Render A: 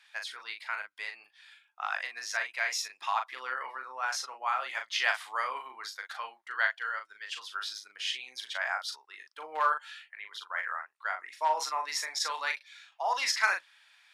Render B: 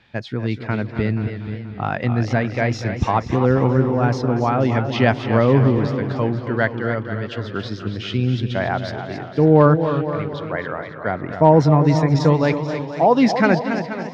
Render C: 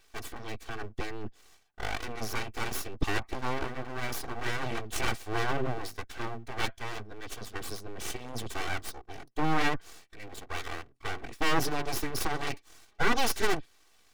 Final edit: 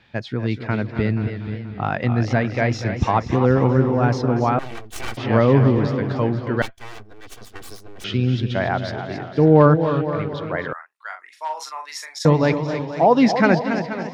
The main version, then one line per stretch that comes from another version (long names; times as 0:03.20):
B
0:04.59–0:05.17: punch in from C
0:06.62–0:08.04: punch in from C
0:10.73–0:12.25: punch in from A